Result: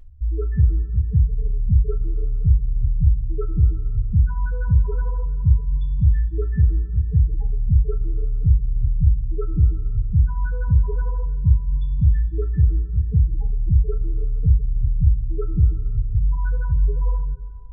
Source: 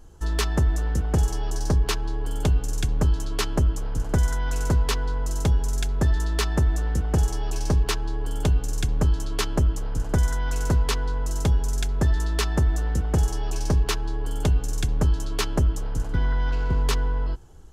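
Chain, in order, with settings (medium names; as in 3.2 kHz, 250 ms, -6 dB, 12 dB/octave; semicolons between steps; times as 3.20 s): loudest bins only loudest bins 4; two-slope reverb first 0.26 s, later 2.7 s, from -18 dB, DRR 4.5 dB; trim +5 dB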